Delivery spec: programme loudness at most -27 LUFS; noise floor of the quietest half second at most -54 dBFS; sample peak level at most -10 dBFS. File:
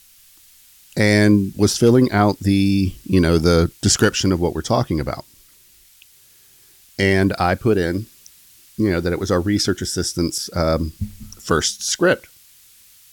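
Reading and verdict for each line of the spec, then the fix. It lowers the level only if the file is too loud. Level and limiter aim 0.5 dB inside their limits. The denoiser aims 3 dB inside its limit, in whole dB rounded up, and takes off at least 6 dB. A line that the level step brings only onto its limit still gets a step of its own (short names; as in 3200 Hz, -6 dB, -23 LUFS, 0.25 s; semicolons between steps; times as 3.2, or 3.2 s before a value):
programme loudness -18.5 LUFS: fail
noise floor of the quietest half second -51 dBFS: fail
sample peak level -4.0 dBFS: fail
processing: gain -9 dB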